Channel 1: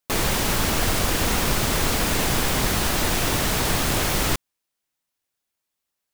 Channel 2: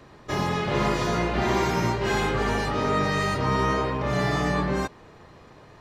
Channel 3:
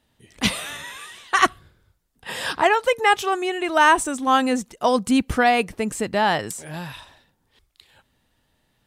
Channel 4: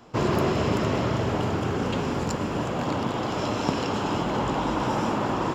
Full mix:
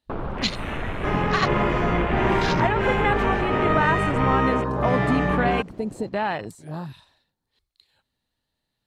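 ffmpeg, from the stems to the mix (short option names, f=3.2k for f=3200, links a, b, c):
-filter_complex "[0:a]lowpass=f=3k:w=0.5412,lowpass=f=3k:w=1.3066,volume=-0.5dB[a];[1:a]adelay=750,volume=2dB[b];[2:a]equalizer=f=4.2k:w=6.2:g=12.5,volume=3dB[c];[3:a]asoftclip=type=hard:threshold=-32dB,adelay=550,volume=-3dB[d];[a][c][d]amix=inputs=3:normalize=0,acompressor=threshold=-28dB:ratio=2,volume=0dB[e];[b][e]amix=inputs=2:normalize=0,afwtdn=0.0316"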